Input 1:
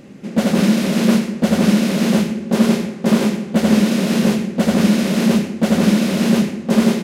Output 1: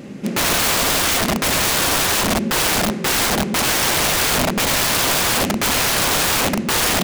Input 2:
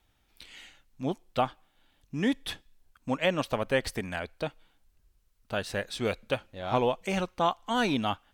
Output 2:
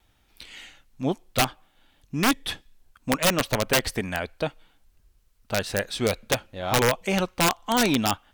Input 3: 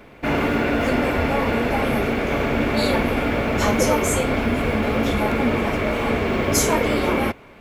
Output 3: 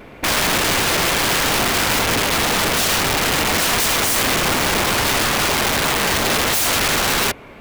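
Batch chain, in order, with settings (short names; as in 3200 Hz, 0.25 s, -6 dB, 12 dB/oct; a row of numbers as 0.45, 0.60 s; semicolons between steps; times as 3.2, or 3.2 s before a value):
vibrato 1 Hz 13 cents; wrapped overs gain 18.5 dB; gain +5.5 dB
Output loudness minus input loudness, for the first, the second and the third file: 0.0, +5.5, +4.5 LU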